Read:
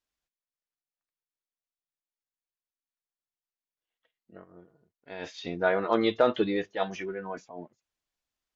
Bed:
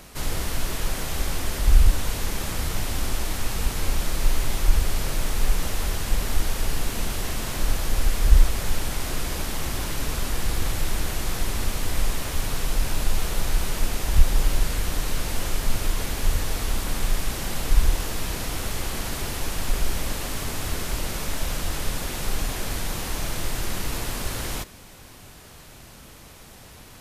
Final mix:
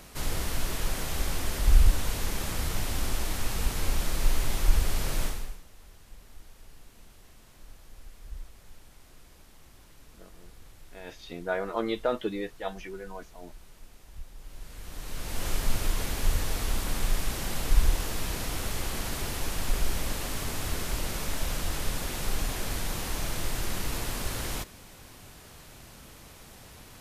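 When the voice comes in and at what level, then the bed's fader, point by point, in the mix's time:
5.85 s, -5.0 dB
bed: 5.25 s -3.5 dB
5.64 s -26.5 dB
14.37 s -26.5 dB
15.49 s -3.5 dB

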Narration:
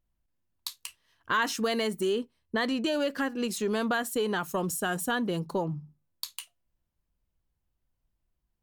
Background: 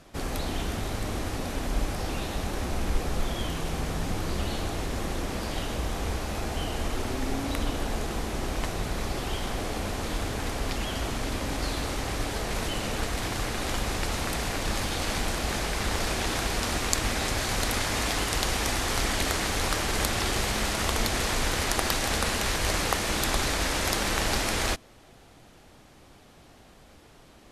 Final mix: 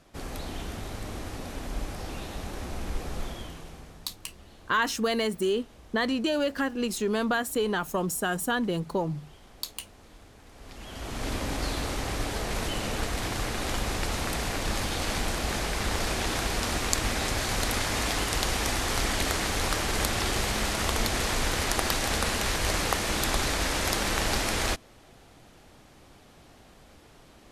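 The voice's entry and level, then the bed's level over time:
3.40 s, +1.5 dB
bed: 3.24 s -5.5 dB
4.15 s -21.5 dB
10.47 s -21.5 dB
11.28 s -0.5 dB

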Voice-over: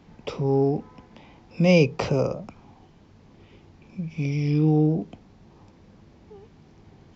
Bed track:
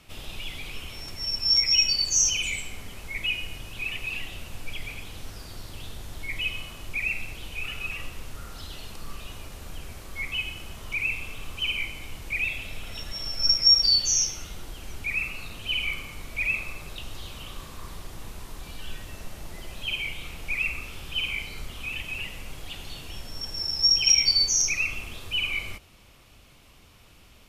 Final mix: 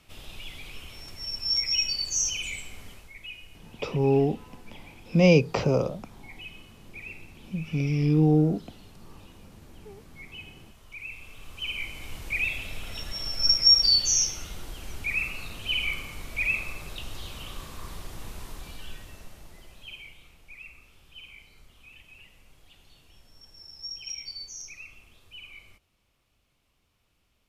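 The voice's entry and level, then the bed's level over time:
3.55 s, -0.5 dB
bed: 2.91 s -5 dB
3.14 s -13.5 dB
10.91 s -13.5 dB
12.15 s 0 dB
18.47 s 0 dB
20.46 s -18 dB

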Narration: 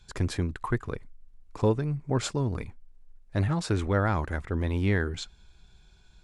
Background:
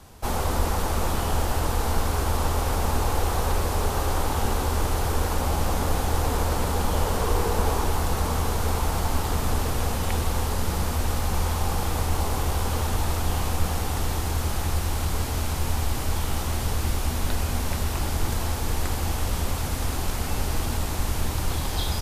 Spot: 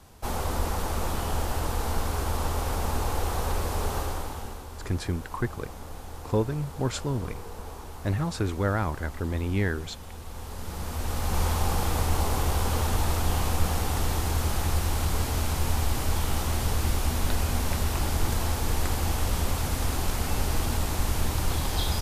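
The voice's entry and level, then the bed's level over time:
4.70 s, -1.0 dB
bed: 3.97 s -4 dB
4.66 s -16.5 dB
10.19 s -16.5 dB
11.42 s -0.5 dB

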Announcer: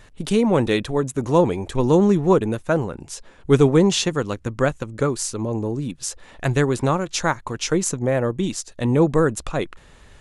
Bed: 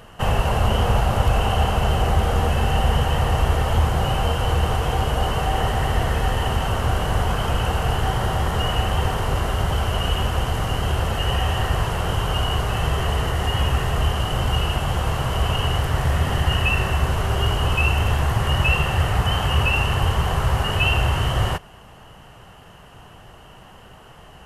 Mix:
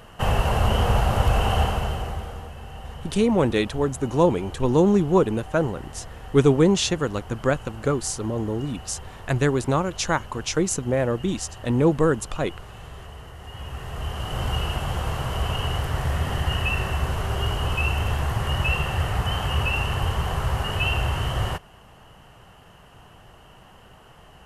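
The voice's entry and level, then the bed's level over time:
2.85 s, -2.0 dB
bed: 1.60 s -1.5 dB
2.52 s -19 dB
13.38 s -19 dB
14.44 s -4.5 dB

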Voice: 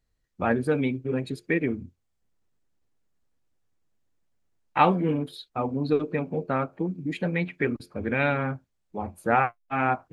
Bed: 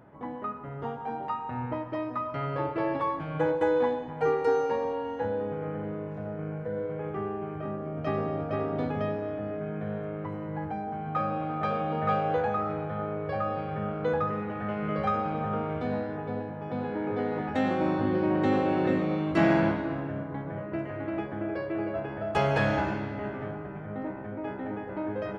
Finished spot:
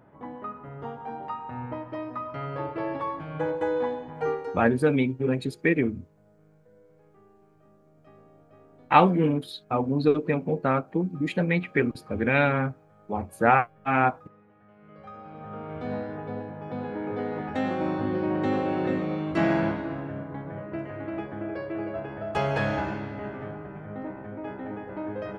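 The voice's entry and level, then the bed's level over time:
4.15 s, +2.5 dB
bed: 4.32 s -2 dB
4.79 s -24.5 dB
14.70 s -24.5 dB
15.92 s -1 dB

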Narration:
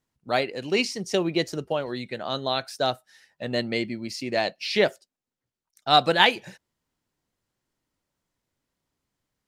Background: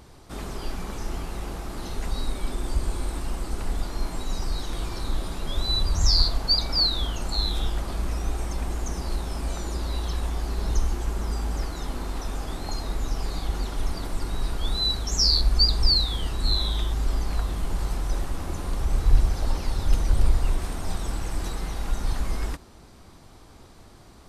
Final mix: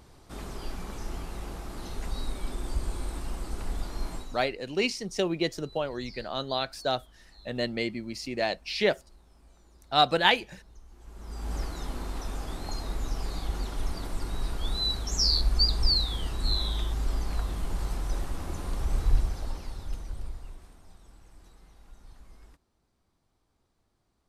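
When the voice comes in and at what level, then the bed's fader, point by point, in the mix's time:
4.05 s, -3.5 dB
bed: 4.15 s -5 dB
4.57 s -28.5 dB
10.85 s -28.5 dB
11.53 s -4 dB
19.01 s -4 dB
20.93 s -25 dB

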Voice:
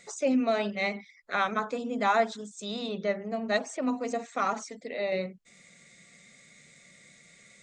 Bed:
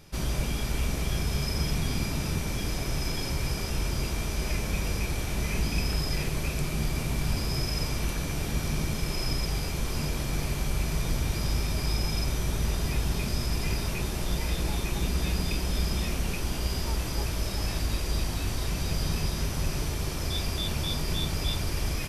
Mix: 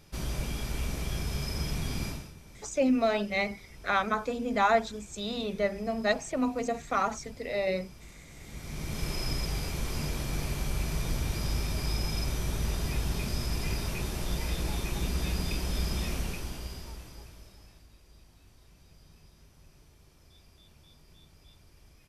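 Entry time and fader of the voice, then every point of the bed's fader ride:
2.55 s, +0.5 dB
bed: 2.09 s -4.5 dB
2.34 s -21 dB
8.28 s -21 dB
9.02 s -3 dB
16.18 s -3 dB
17.90 s -28.5 dB

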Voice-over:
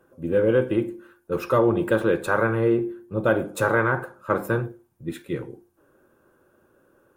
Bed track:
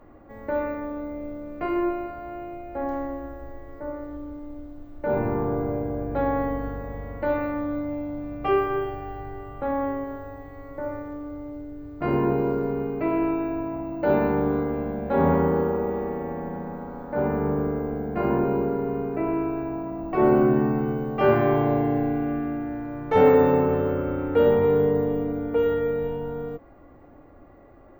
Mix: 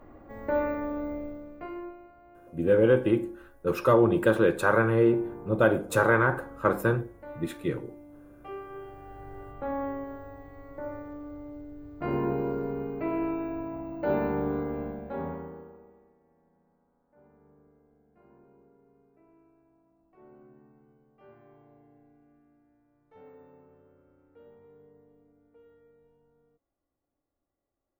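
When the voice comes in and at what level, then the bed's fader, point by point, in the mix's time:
2.35 s, -1.0 dB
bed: 1.13 s -0.5 dB
1.98 s -18.5 dB
8.59 s -18.5 dB
9.41 s -6 dB
14.85 s -6 dB
16.18 s -36 dB

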